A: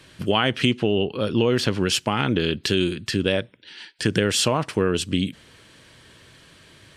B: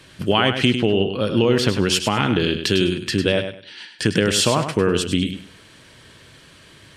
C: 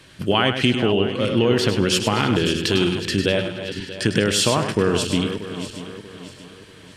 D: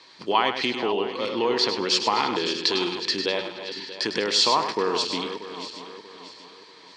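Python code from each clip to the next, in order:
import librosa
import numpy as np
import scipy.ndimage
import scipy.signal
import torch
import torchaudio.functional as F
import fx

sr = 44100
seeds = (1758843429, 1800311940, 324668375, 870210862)

y1 = fx.echo_feedback(x, sr, ms=101, feedback_pct=23, wet_db=-8.5)
y1 = y1 * librosa.db_to_amplitude(2.5)
y2 = fx.reverse_delay_fb(y1, sr, ms=317, feedback_pct=61, wet_db=-10.5)
y2 = y2 * librosa.db_to_amplitude(-1.0)
y3 = fx.cabinet(y2, sr, low_hz=470.0, low_slope=12, high_hz=5900.0, hz=(600.0, 960.0, 1500.0, 2900.0, 4400.0), db=(-7, 8, -9, -9, 8))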